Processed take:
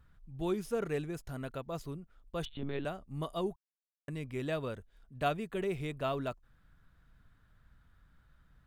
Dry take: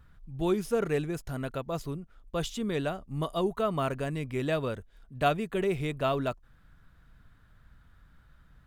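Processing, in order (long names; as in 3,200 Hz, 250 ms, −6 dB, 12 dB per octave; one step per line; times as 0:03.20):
0:02.45–0:02.85: one-pitch LPC vocoder at 8 kHz 140 Hz
0:03.56–0:04.08: silence
level −6 dB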